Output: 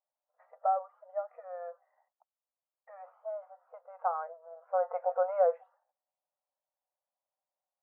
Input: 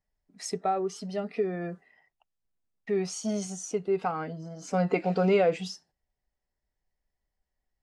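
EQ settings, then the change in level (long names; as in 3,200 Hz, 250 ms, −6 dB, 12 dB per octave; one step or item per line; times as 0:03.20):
linear-phase brick-wall high-pass 490 Hz
Butterworth low-pass 1,300 Hz 36 dB per octave
0.0 dB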